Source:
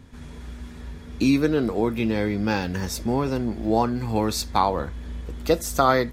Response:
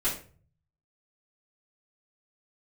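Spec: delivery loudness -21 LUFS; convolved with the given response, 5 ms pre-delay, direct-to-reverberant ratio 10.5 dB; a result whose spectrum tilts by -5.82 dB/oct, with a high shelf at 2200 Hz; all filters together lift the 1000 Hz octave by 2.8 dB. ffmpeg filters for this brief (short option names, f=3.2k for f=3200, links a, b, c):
-filter_complex "[0:a]equalizer=f=1k:t=o:g=4.5,highshelf=f=2.2k:g=-4.5,asplit=2[a][b];[1:a]atrim=start_sample=2205,adelay=5[c];[b][c]afir=irnorm=-1:irlink=0,volume=-18.5dB[d];[a][d]amix=inputs=2:normalize=0,volume=1.5dB"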